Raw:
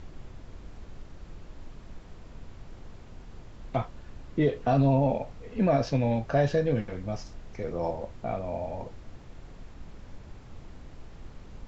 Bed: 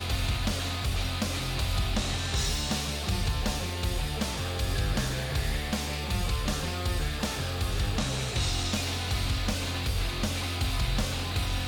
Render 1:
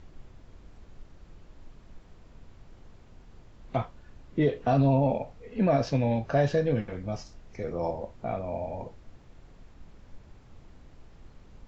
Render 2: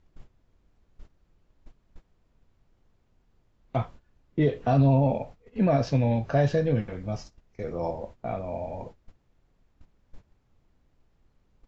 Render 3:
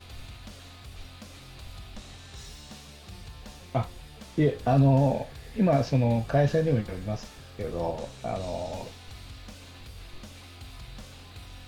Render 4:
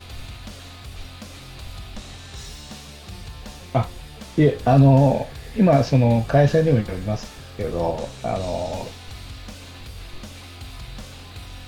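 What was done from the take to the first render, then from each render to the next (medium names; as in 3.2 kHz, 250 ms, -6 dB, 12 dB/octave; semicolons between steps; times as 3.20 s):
noise print and reduce 6 dB
dynamic bell 120 Hz, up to +4 dB, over -36 dBFS, Q 0.97; gate -42 dBFS, range -15 dB
add bed -15.5 dB
trim +7 dB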